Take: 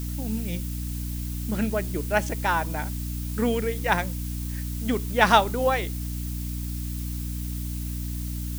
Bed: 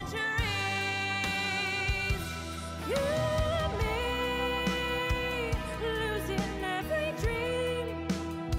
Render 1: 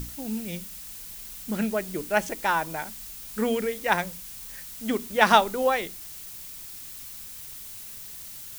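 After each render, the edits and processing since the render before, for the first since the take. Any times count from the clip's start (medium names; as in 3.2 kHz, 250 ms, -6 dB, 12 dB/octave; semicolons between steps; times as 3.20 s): hum notches 60/120/180/240/300 Hz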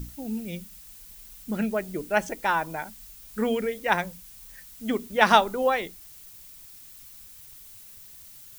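noise reduction 8 dB, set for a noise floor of -41 dBFS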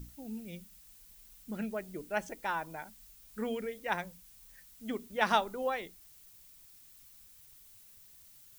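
trim -10 dB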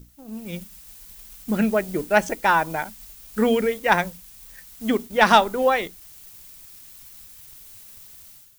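level rider gain up to 12.5 dB; waveshaping leveller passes 1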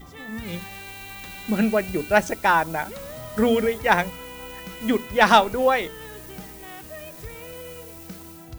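add bed -8.5 dB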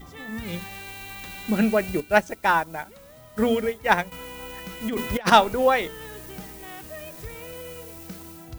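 2.00–4.12 s: upward expansion, over -36 dBFS; 4.88–5.32 s: compressor with a negative ratio -24 dBFS, ratio -0.5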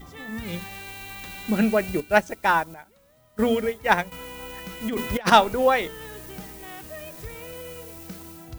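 2.74–3.39 s: gain -11 dB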